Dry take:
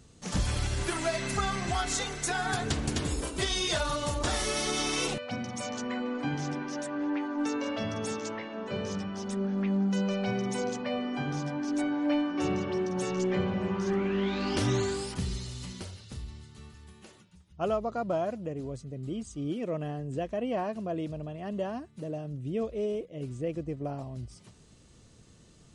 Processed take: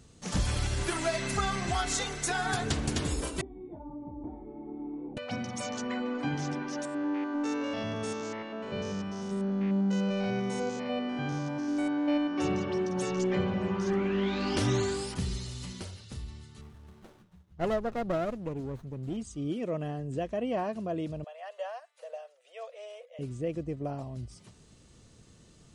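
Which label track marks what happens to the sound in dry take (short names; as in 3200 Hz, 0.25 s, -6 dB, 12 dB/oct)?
3.410000	5.170000	vocal tract filter u
6.850000	12.370000	stepped spectrum every 0.1 s
16.610000	19.170000	running maximum over 17 samples
21.240000	23.190000	rippled Chebyshev high-pass 490 Hz, ripple 3 dB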